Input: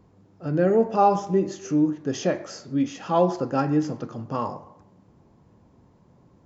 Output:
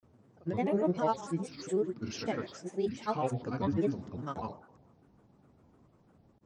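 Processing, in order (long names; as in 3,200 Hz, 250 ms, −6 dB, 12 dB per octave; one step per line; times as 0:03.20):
dynamic equaliser 580 Hz, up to −6 dB, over −31 dBFS, Q 0.79
granular cloud, pitch spread up and down by 7 semitones
level −5.5 dB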